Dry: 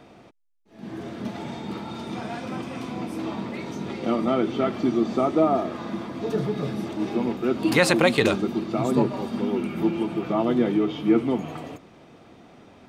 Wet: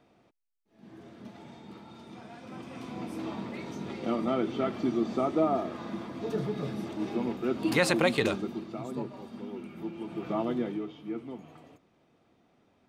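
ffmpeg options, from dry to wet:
-af "volume=2dB,afade=t=in:st=2.37:d=0.72:silence=0.375837,afade=t=out:st=8.13:d=0.73:silence=0.375837,afade=t=in:st=9.97:d=0.36:silence=0.398107,afade=t=out:st=10.33:d=0.63:silence=0.298538"

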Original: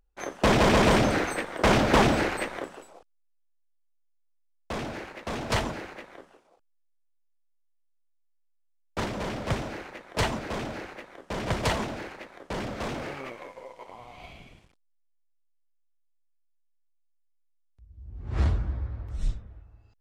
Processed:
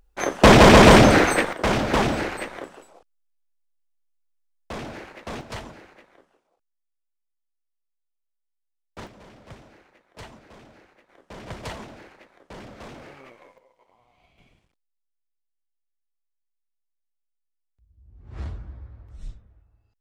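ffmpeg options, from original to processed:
-af "asetnsamples=n=441:p=0,asendcmd='1.53 volume volume -1dB;5.41 volume volume -9dB;9.07 volume volume -16dB;11.09 volume volume -8.5dB;13.58 volume volume -17dB;14.38 volume volume -9dB',volume=10dB"

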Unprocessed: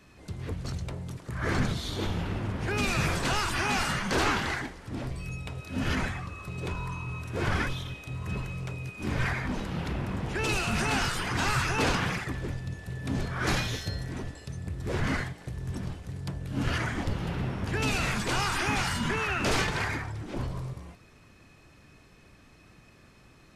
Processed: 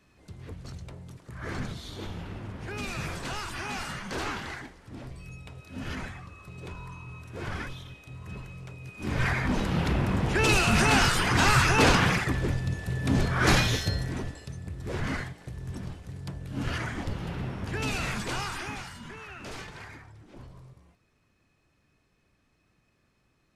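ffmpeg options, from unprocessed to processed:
-af "volume=6dB,afade=t=in:st=8.8:d=0.85:silence=0.223872,afade=t=out:st=13.74:d=0.86:silence=0.375837,afade=t=out:st=18.2:d=0.72:silence=0.266073"

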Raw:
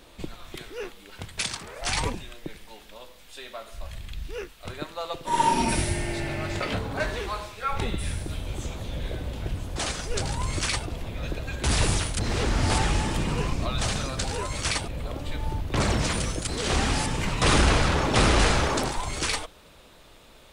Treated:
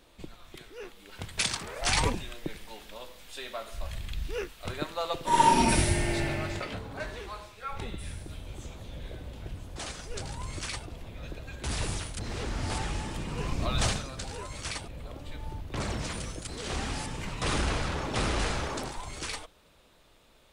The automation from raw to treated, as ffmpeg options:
-af "volume=10.5dB,afade=t=in:st=0.8:d=0.67:silence=0.354813,afade=t=out:st=6.21:d=0.49:silence=0.316228,afade=t=in:st=13.31:d=0.54:silence=0.334965,afade=t=out:st=13.85:d=0.18:silence=0.334965"

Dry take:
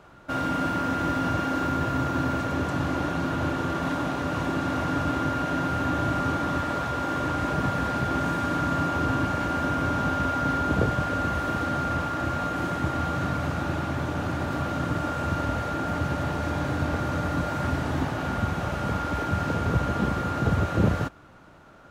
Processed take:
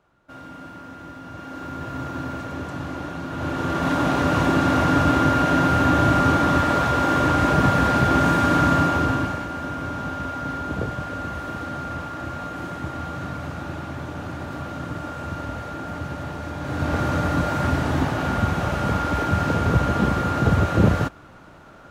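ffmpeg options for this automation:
-af "volume=16.5dB,afade=t=in:st=1.26:d=0.79:silence=0.354813,afade=t=in:st=3.29:d=0.88:silence=0.251189,afade=t=out:st=8.67:d=0.79:silence=0.266073,afade=t=in:st=16.6:d=0.4:silence=0.375837"

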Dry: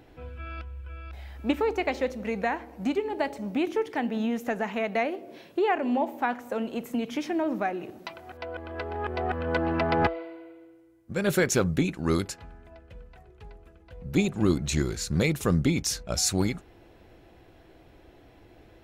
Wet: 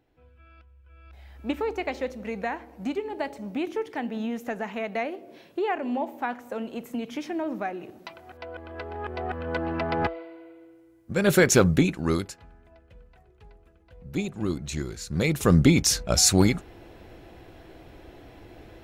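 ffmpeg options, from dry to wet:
-af "volume=17.5dB,afade=t=in:st=0.83:d=0.74:silence=0.223872,afade=t=in:st=10.28:d=1.37:silence=0.375837,afade=t=out:st=11.65:d=0.69:silence=0.281838,afade=t=in:st=15.09:d=0.52:silence=0.266073"

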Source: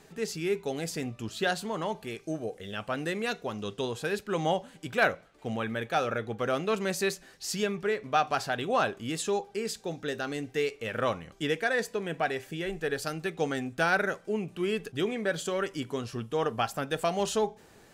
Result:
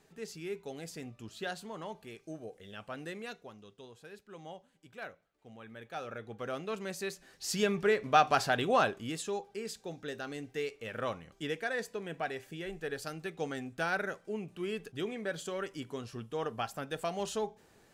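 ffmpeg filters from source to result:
-af "volume=11dB,afade=t=out:st=3.13:d=0.54:silence=0.334965,afade=t=in:st=5.55:d=0.91:silence=0.298538,afade=t=in:st=7.12:d=0.67:silence=0.298538,afade=t=out:st=8.56:d=0.69:silence=0.375837"

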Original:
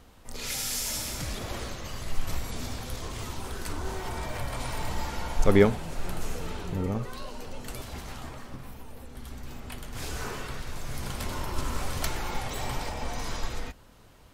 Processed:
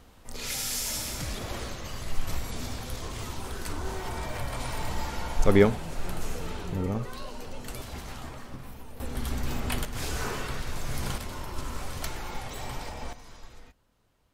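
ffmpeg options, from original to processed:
-af "asetnsamples=n=441:p=0,asendcmd='9 volume volume 10dB;9.85 volume volume 3dB;11.18 volume volume -4dB;13.13 volume volume -15dB',volume=0dB"

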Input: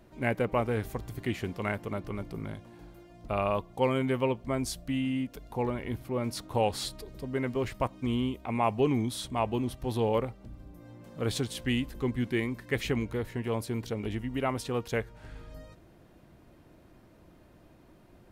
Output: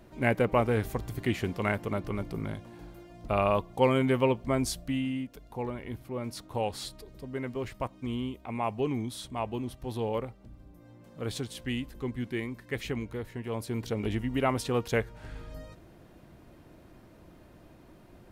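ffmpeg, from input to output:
-af "volume=10dB,afade=t=out:st=4.62:d=0.65:silence=0.446684,afade=t=in:st=13.48:d=0.57:silence=0.446684"

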